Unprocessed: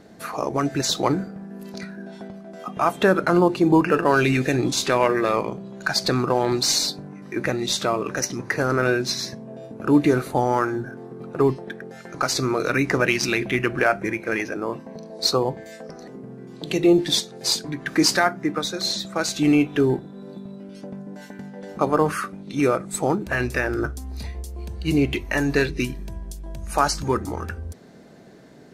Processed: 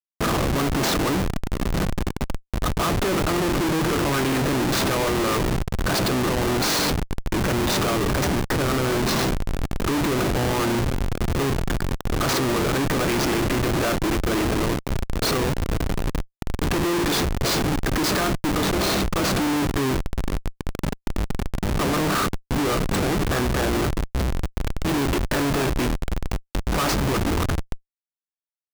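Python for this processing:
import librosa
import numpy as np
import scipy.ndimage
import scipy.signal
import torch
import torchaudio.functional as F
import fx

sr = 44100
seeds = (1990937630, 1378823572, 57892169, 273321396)

y = fx.bin_compress(x, sr, power=0.6)
y = fx.peak_eq(y, sr, hz=1200.0, db=5.5, octaves=0.27)
y = fx.schmitt(y, sr, flips_db=-19.5)
y = y * librosa.db_to_amplitude(-3.0)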